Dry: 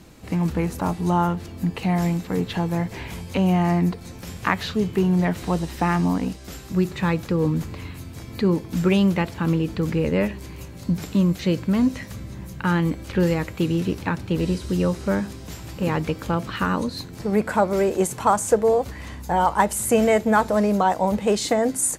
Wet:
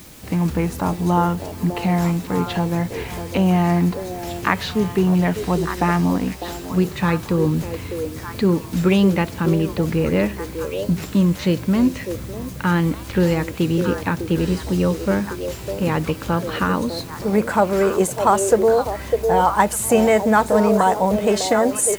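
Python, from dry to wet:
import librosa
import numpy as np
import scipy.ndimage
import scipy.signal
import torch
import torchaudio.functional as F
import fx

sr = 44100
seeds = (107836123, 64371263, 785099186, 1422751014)

p1 = fx.echo_stepped(x, sr, ms=602, hz=480.0, octaves=1.4, feedback_pct=70, wet_db=-4.0)
p2 = fx.quant_dither(p1, sr, seeds[0], bits=6, dither='triangular')
y = p1 + F.gain(torch.from_numpy(p2), -9.0).numpy()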